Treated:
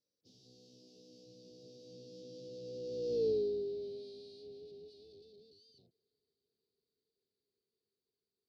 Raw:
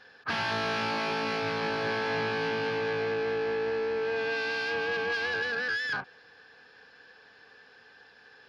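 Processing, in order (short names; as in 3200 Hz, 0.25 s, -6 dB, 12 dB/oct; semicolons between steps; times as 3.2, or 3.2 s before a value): Doppler pass-by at 3.25, 38 m/s, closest 6.4 m; elliptic band-stop 460–4300 Hz, stop band 60 dB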